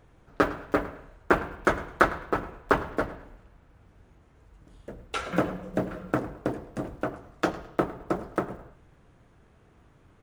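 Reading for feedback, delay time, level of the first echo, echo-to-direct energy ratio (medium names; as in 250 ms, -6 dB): 28%, 106 ms, -18.0 dB, -17.5 dB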